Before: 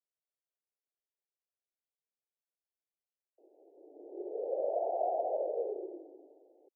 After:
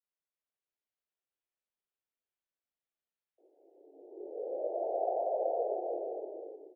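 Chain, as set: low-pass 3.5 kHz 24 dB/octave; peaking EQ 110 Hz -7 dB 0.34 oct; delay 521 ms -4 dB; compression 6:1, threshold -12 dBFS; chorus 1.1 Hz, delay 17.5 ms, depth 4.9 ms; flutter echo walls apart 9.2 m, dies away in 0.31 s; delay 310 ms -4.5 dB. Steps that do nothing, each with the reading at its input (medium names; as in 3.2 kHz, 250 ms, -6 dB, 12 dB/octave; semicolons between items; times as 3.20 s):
low-pass 3.5 kHz: input has nothing above 910 Hz; peaking EQ 110 Hz: input has nothing below 270 Hz; compression, threshold -12 dBFS: peak at its input -20.5 dBFS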